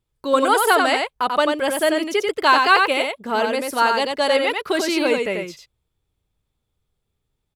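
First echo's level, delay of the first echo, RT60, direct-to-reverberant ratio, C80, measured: −4.0 dB, 90 ms, no reverb audible, no reverb audible, no reverb audible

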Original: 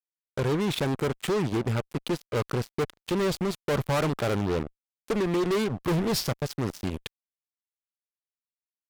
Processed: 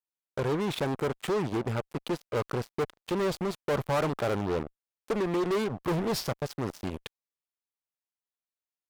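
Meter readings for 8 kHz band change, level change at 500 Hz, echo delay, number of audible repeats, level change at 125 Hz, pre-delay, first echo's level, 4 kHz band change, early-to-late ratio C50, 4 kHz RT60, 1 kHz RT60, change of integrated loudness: −5.5 dB, −1.5 dB, no echo audible, no echo audible, −5.0 dB, no reverb audible, no echo audible, −4.5 dB, no reverb audible, no reverb audible, no reverb audible, −2.5 dB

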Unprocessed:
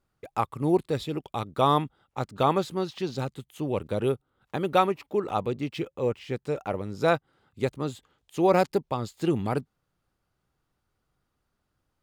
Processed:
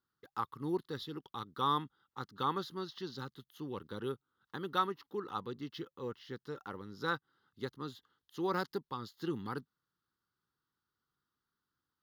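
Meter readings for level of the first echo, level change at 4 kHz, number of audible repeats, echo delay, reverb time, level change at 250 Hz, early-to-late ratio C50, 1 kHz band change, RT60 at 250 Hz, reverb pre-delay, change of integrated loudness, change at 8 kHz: no echo audible, −6.0 dB, no echo audible, no echo audible, no reverb audible, −12.0 dB, no reverb audible, −9.5 dB, no reverb audible, no reverb audible, −11.5 dB, can't be measured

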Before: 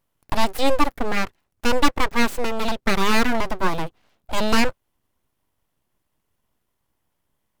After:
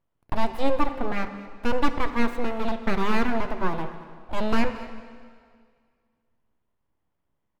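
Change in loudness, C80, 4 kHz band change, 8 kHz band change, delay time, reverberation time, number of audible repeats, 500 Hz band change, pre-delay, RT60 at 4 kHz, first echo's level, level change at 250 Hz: −5.0 dB, 10.5 dB, −11.5 dB, −16.5 dB, 223 ms, 2.0 s, 1, −3.5 dB, 5 ms, 1.9 s, −17.5 dB, −3.0 dB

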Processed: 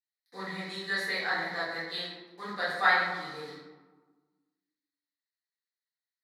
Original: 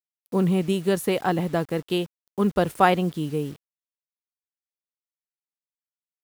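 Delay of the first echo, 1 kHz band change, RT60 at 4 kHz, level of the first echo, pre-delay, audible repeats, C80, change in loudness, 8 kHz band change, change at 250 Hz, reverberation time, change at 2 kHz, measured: no echo audible, −6.5 dB, 0.65 s, no echo audible, 4 ms, no echo audible, 3.5 dB, −6.5 dB, below −10 dB, −20.0 dB, 1.3 s, +4.5 dB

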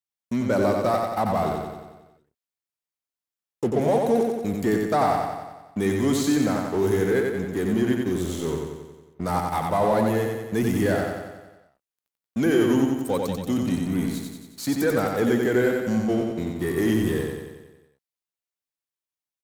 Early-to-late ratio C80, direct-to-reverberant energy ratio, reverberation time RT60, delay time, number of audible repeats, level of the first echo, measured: no reverb audible, no reverb audible, no reverb audible, 91 ms, 7, −3.5 dB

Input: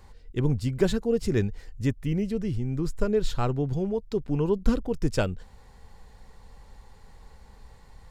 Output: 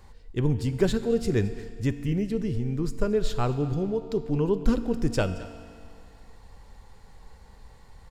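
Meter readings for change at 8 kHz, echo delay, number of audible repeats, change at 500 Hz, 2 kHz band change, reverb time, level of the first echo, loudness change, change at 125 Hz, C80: +0.5 dB, 220 ms, 1, +0.5 dB, +0.5 dB, 2.2 s, −18.5 dB, +0.5 dB, +0.5 dB, 12.0 dB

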